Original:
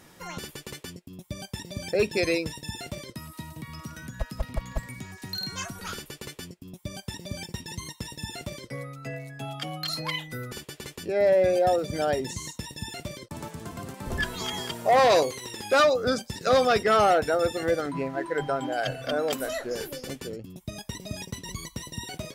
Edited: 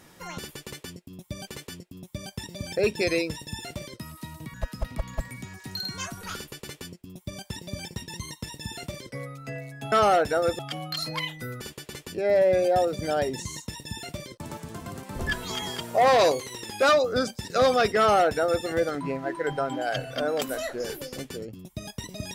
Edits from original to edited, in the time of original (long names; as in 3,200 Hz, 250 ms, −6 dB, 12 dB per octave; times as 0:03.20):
0:00.63–0:01.47: repeat, 2 plays
0:03.70–0:04.12: remove
0:16.89–0:17.56: duplicate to 0:09.50